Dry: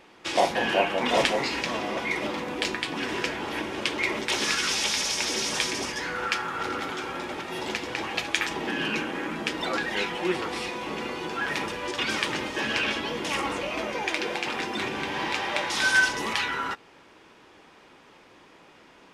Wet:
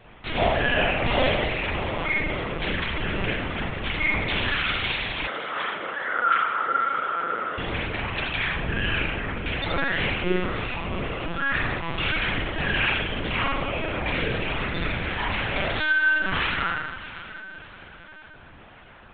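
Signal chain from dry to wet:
dynamic equaliser 750 Hz, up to −7 dB, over −44 dBFS, Q 2.1
reverb reduction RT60 1.6 s
feedback delay with all-pass diffusion 650 ms, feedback 44%, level −15.5 dB
soft clipping −19.5 dBFS, distortion −15 dB
spring reverb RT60 1.1 s, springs 40 ms, chirp 80 ms, DRR −5 dB
linear-prediction vocoder at 8 kHz pitch kept
0:05.27–0:07.58: loudspeaker in its box 420–3,100 Hz, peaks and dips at 500 Hz +4 dB, 1,300 Hz +9 dB, 2,500 Hz −9 dB
level +1.5 dB

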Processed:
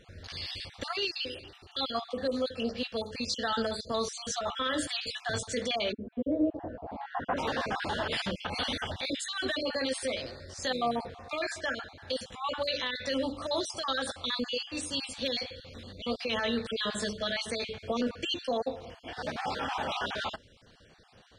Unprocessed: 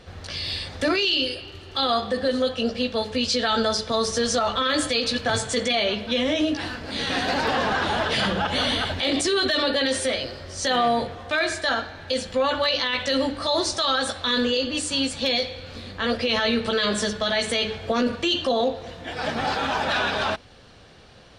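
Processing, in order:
time-frequency cells dropped at random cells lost 34%
0:05.91–0:07.36: low-pass with resonance 290 Hz → 1,200 Hz, resonance Q 3.5
level −7.5 dB

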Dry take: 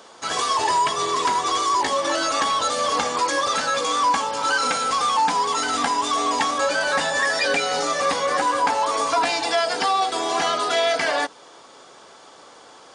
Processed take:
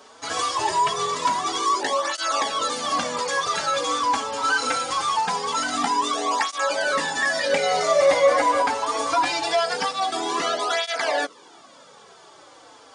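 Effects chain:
0:07.52–0:08.61: hollow resonant body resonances 610/2,100 Hz, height 13 dB → 17 dB, ringing for 35 ms
through-zero flanger with one copy inverted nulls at 0.23 Hz, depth 6 ms
level +1 dB

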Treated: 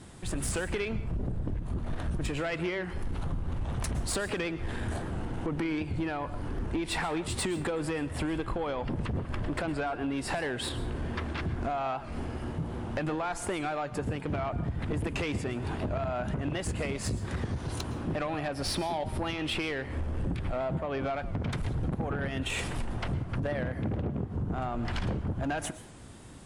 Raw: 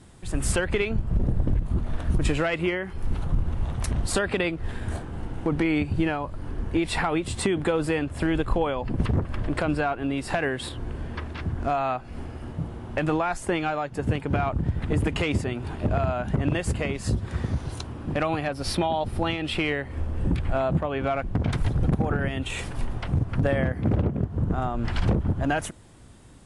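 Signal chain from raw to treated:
low-shelf EQ 81 Hz −5.5 dB
downward compressor, threshold −29 dBFS, peak gain reduction 9.5 dB
soft clipping −27.5 dBFS, distortion −15 dB
dense smooth reverb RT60 0.55 s, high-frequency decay 0.8×, pre-delay 100 ms, DRR 14 dB
wow of a warped record 78 rpm, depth 100 cents
level +3 dB

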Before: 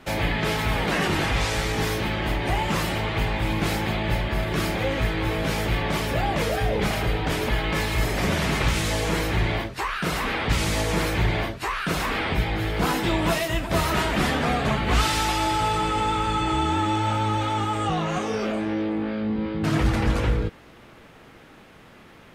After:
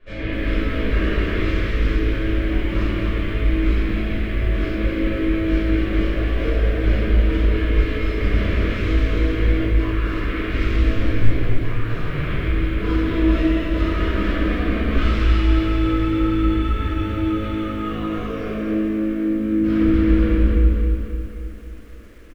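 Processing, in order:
low-pass filter 2,200 Hz 12 dB per octave
low-shelf EQ 61 Hz +12 dB
phaser with its sweep stopped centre 340 Hz, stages 4
slap from a distant wall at 36 metres, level −7 dB
0:10.95–0:12.22: ring modulation 45 Hz → 110 Hz
rectangular room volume 660 cubic metres, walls mixed, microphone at 5.6 metres
feedback echo at a low word length 266 ms, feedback 55%, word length 7 bits, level −7 dB
level −10 dB

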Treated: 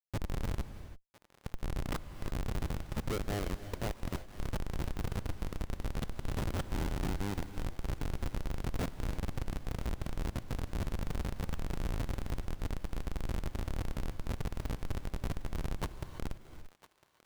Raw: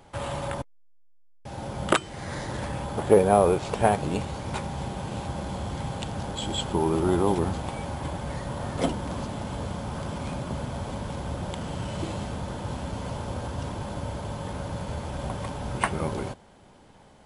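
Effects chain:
downward compressor 3 to 1, threshold −40 dBFS, peak gain reduction 20 dB
comparator with hysteresis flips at −33 dBFS
feedback echo with a high-pass in the loop 1,004 ms, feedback 45%, high-pass 800 Hz, level −16.5 dB
reverb whose tail is shaped and stops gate 360 ms rising, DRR 11 dB
level +8 dB

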